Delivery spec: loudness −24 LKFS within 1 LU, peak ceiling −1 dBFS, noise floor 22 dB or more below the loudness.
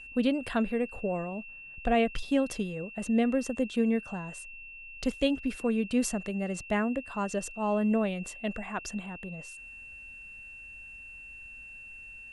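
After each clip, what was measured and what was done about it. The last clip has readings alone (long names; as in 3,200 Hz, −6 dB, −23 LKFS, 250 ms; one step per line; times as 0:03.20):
interfering tone 2,700 Hz; level of the tone −44 dBFS; integrated loudness −30.5 LKFS; sample peak −13.5 dBFS; target loudness −24.0 LKFS
→ notch filter 2,700 Hz, Q 30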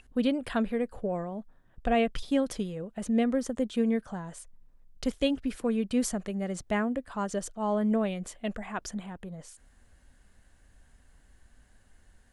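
interfering tone none found; integrated loudness −30.5 LKFS; sample peak −13.5 dBFS; target loudness −24.0 LKFS
→ level +6.5 dB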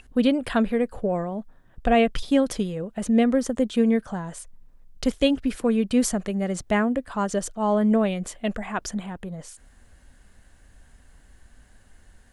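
integrated loudness −24.0 LKFS; sample peak −7.0 dBFS; background noise floor −55 dBFS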